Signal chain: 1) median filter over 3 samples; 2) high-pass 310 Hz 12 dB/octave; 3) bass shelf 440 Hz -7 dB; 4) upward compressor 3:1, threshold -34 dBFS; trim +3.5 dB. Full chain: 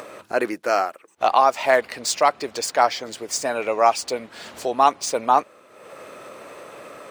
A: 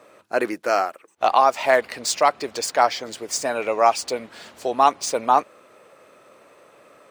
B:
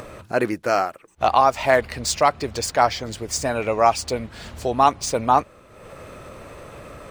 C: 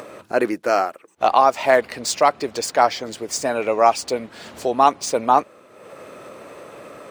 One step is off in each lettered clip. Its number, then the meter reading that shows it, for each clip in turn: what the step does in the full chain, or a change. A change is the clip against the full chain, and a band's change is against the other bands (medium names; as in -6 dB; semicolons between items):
4, momentary loudness spread change -11 LU; 2, 125 Hz band +15.5 dB; 3, 125 Hz band +5.5 dB